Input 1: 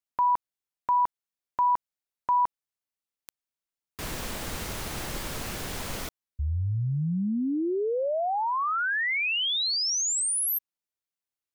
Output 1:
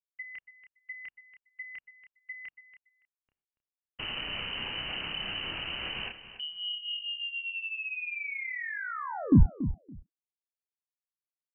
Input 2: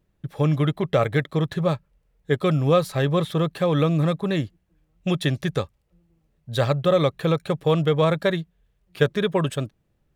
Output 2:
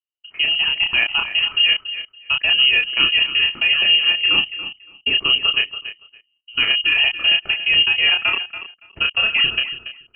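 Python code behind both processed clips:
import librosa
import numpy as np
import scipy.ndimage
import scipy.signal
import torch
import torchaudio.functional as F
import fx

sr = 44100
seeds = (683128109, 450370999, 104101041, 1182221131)

p1 = fx.peak_eq(x, sr, hz=200.0, db=5.0, octaves=1.2)
p2 = fx.freq_invert(p1, sr, carrier_hz=3000)
p3 = fx.rider(p2, sr, range_db=4, speed_s=2.0)
p4 = fx.low_shelf(p3, sr, hz=320.0, db=8.5)
p5 = fx.gate_hold(p4, sr, open_db=-45.0, close_db=-50.0, hold_ms=93.0, range_db=-27, attack_ms=10.0, release_ms=90.0)
p6 = fx.level_steps(p5, sr, step_db=21)
p7 = fx.doubler(p6, sr, ms=30.0, db=-4.0)
p8 = p7 + fx.echo_feedback(p7, sr, ms=283, feedback_pct=16, wet_db=-12.5, dry=0)
y = p8 * 10.0 ** (4.0 / 20.0)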